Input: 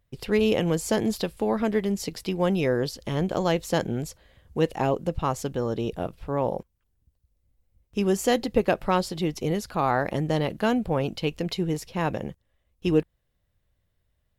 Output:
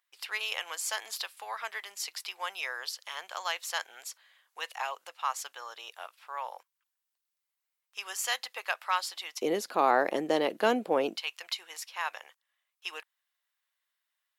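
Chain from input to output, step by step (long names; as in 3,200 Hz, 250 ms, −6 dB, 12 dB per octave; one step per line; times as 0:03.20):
high-pass filter 1,000 Hz 24 dB per octave, from 0:09.42 300 Hz, from 0:11.17 1,000 Hz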